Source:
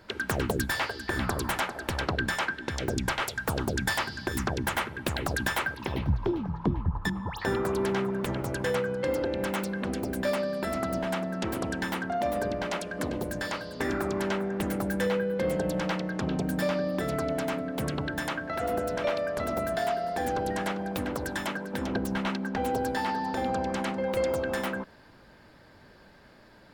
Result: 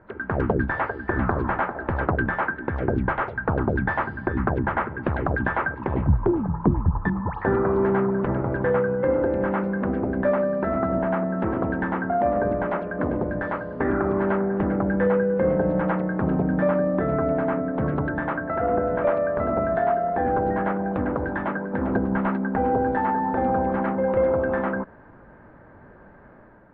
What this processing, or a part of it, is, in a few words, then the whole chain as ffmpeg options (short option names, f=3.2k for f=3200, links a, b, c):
action camera in a waterproof case: -af "lowpass=f=1.6k:w=0.5412,lowpass=f=1.6k:w=1.3066,dynaudnorm=f=100:g=7:m=5dB,volume=2dB" -ar 32000 -c:a aac -b:a 64k